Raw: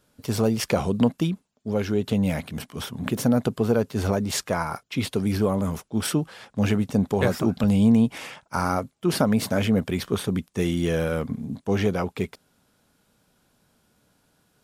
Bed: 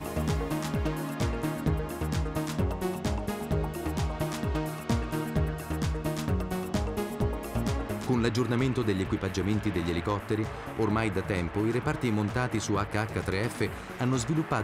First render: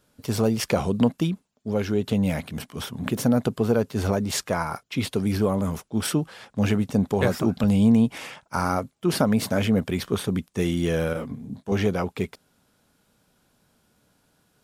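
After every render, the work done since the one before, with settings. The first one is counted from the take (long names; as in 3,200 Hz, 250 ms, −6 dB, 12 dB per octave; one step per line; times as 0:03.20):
0:11.13–0:11.72: micro pitch shift up and down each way 45 cents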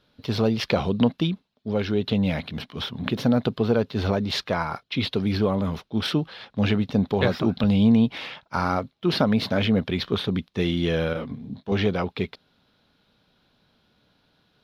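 high shelf with overshoot 5,700 Hz −13 dB, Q 3
notch filter 4,600 Hz, Q 27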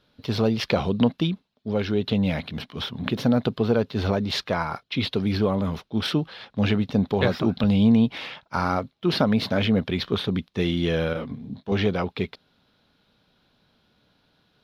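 no processing that can be heard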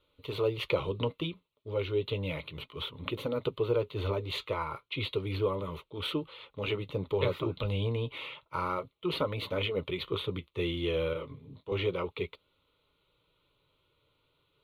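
phaser with its sweep stopped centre 1,100 Hz, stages 8
flanger 0.32 Hz, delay 3.4 ms, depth 5.5 ms, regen −61%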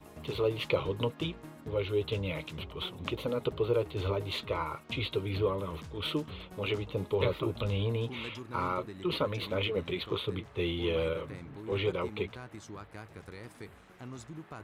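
mix in bed −17 dB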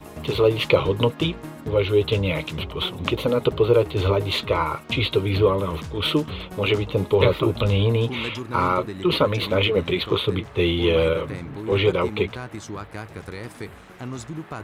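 level +11.5 dB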